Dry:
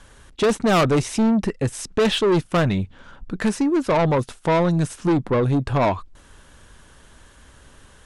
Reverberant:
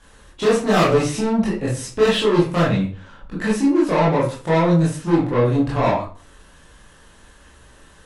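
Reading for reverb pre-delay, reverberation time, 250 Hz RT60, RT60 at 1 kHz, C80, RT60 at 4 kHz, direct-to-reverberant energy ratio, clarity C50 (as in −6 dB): 16 ms, 0.40 s, 0.45 s, 0.40 s, 10.5 dB, 0.35 s, −7.5 dB, 5.0 dB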